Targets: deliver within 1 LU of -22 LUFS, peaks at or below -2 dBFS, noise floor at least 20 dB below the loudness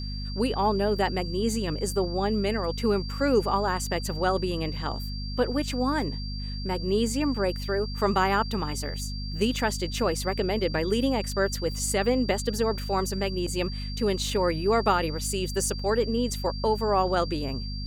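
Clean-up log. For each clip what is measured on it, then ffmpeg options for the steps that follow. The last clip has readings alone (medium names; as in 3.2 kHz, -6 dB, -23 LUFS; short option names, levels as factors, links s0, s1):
hum 50 Hz; highest harmonic 250 Hz; hum level -31 dBFS; steady tone 4.7 kHz; tone level -39 dBFS; loudness -27.0 LUFS; peak level -9.5 dBFS; loudness target -22.0 LUFS
-> -af "bandreject=f=50:t=h:w=4,bandreject=f=100:t=h:w=4,bandreject=f=150:t=h:w=4,bandreject=f=200:t=h:w=4,bandreject=f=250:t=h:w=4"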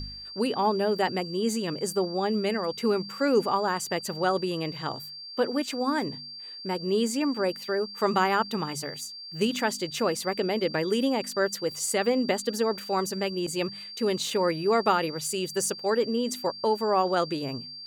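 hum not found; steady tone 4.7 kHz; tone level -39 dBFS
-> -af "bandreject=f=4700:w=30"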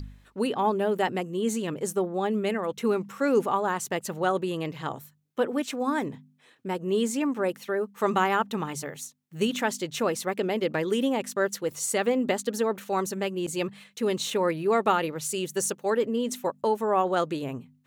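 steady tone not found; loudness -27.5 LUFS; peak level -9.5 dBFS; loudness target -22.0 LUFS
-> -af "volume=1.88"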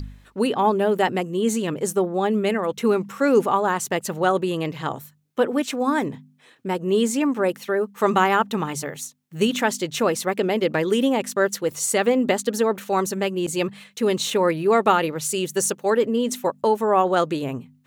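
loudness -22.0 LUFS; peak level -4.0 dBFS; noise floor -56 dBFS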